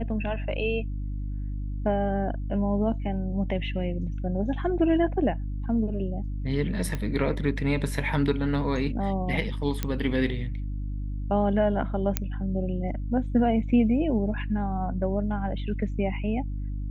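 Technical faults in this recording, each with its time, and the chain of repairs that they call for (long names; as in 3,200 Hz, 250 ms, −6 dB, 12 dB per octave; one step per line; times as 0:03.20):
mains hum 50 Hz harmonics 6 −31 dBFS
0:06.95: click −18 dBFS
0:09.83: click −13 dBFS
0:12.17: click −8 dBFS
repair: click removal
hum removal 50 Hz, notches 6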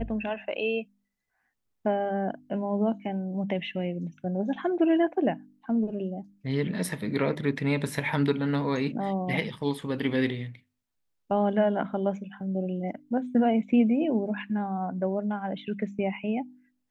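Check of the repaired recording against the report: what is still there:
none of them is left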